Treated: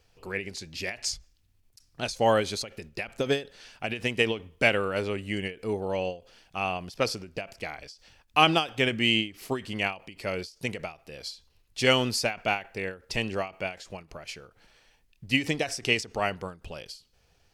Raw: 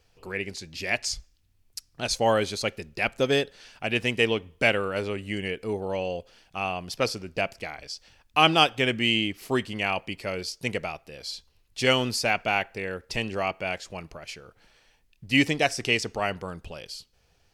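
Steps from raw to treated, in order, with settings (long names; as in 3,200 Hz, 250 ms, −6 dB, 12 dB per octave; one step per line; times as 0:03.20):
every ending faded ahead of time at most 190 dB per second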